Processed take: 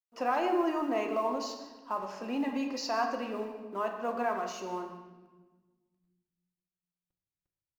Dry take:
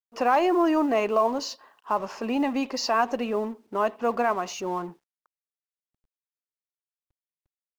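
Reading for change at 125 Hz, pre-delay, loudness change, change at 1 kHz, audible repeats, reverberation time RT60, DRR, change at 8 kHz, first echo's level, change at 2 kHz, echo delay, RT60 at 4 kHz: no reading, 3 ms, -7.5 dB, -7.0 dB, 1, 1.3 s, 3.0 dB, -7.5 dB, -16.5 dB, -7.0 dB, 151 ms, 1.1 s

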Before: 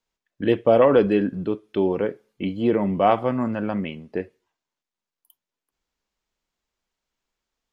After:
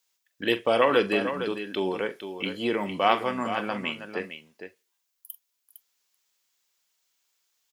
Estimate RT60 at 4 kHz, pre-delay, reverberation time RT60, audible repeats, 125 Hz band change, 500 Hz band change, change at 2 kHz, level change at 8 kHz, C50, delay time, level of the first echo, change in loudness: no reverb, no reverb, no reverb, 2, -11.5 dB, -6.0 dB, +5.0 dB, no reading, no reverb, 43 ms, -13.5 dB, -5.0 dB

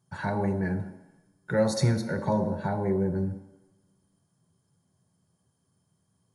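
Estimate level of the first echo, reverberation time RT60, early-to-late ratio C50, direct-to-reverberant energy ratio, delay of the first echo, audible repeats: no echo, 1.0 s, 9.5 dB, 5.0 dB, no echo, no echo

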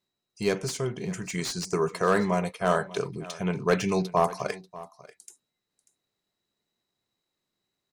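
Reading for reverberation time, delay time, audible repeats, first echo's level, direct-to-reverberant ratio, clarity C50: no reverb, 590 ms, 1, -18.5 dB, no reverb, no reverb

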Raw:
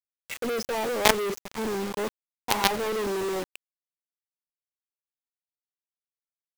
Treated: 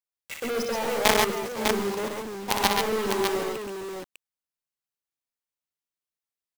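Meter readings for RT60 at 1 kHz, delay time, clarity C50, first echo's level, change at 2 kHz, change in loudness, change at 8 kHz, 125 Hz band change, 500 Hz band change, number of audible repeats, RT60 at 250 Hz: no reverb, 60 ms, no reverb, -6.0 dB, +1.5 dB, +1.0 dB, +2.0 dB, +2.0 dB, +1.5 dB, 3, no reverb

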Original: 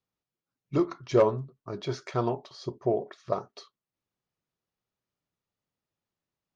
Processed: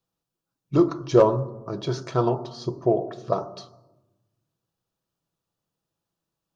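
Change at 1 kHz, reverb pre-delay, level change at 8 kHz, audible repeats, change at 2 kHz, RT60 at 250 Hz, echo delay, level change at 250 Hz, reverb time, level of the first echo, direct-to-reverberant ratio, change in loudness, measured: +5.5 dB, 6 ms, no reading, no echo, +1.5 dB, 1.5 s, no echo, +7.0 dB, 1.1 s, no echo, 11.5 dB, +5.5 dB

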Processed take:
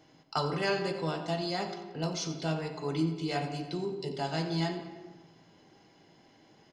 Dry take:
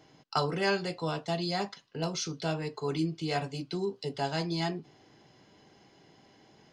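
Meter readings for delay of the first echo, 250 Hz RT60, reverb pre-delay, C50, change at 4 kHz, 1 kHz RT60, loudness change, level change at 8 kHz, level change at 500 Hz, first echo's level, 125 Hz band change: 89 ms, 1.6 s, 3 ms, 7.0 dB, -1.5 dB, 1.2 s, -0.5 dB, -2.0 dB, -0.5 dB, -13.5 dB, +0.5 dB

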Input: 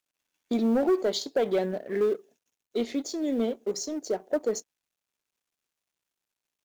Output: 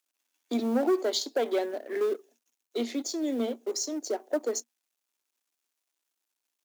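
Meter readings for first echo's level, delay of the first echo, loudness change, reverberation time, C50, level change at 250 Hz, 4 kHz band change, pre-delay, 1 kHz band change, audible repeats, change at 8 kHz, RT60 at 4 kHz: no echo, no echo, -1.5 dB, no reverb, no reverb, -2.5 dB, +2.0 dB, no reverb, 0.0 dB, no echo, +3.5 dB, no reverb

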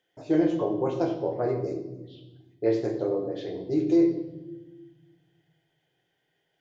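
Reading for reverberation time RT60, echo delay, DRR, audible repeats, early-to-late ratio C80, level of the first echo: 1.1 s, no echo, 4.5 dB, no echo, 9.5 dB, no echo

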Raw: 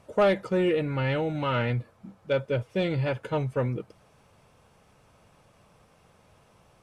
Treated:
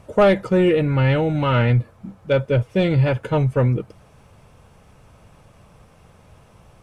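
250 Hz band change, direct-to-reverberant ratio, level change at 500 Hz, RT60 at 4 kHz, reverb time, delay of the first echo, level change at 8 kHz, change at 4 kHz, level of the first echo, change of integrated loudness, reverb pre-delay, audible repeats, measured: +9.0 dB, no reverb, +7.0 dB, no reverb, no reverb, no echo, no reading, +5.5 dB, no echo, +8.5 dB, no reverb, no echo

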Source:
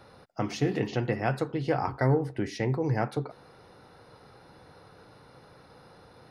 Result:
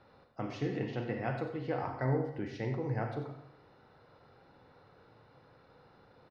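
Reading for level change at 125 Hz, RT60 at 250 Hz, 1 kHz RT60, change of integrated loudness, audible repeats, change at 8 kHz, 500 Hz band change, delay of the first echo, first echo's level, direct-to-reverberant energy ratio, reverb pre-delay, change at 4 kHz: -6.5 dB, 0.80 s, 0.70 s, -7.0 dB, 1, under -15 dB, -7.0 dB, 91 ms, -11.5 dB, 4.0 dB, 35 ms, -10.0 dB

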